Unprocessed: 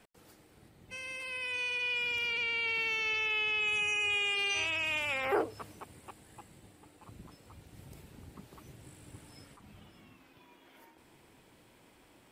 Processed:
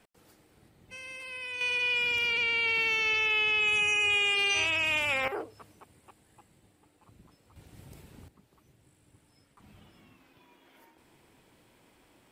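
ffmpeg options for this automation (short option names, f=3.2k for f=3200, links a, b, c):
-af "asetnsamples=n=441:p=0,asendcmd='1.61 volume volume 5dB;5.28 volume volume -6.5dB;7.56 volume volume 1dB;8.28 volume volume -11dB;9.57 volume volume -1dB',volume=-1.5dB"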